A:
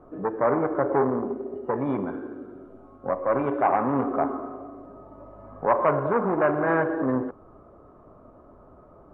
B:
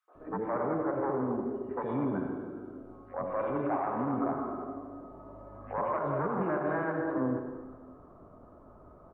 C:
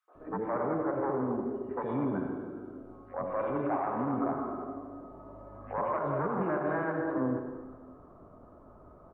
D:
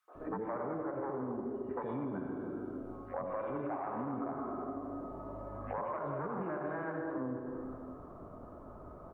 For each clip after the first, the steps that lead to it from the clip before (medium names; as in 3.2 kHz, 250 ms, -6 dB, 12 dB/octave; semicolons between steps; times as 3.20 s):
peak limiter -19.5 dBFS, peak gain reduction 10 dB; three bands offset in time highs, mids, lows 80/150 ms, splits 480/2400 Hz; plate-style reverb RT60 1.3 s, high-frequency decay 0.9×, pre-delay 75 ms, DRR 7.5 dB; trim -2.5 dB
no audible change
compression 5:1, threshold -40 dBFS, peak gain reduction 12.5 dB; trim +4 dB